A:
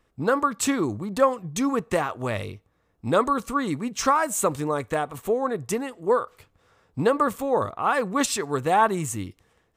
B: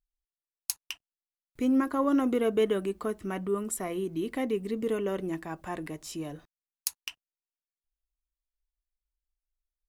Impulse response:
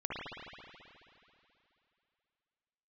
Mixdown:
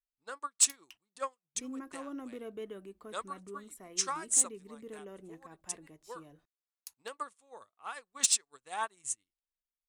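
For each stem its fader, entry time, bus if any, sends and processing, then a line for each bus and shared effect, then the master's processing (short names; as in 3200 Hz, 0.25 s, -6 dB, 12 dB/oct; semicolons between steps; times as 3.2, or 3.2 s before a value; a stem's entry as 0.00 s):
-5.0 dB, 0.00 s, no send, elliptic low-pass 9900 Hz, stop band 40 dB; tilt +4.5 dB/oct; upward expander 2.5:1, over -40 dBFS
-17.0 dB, 0.00 s, no send, dry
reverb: off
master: soft clip -13.5 dBFS, distortion -16 dB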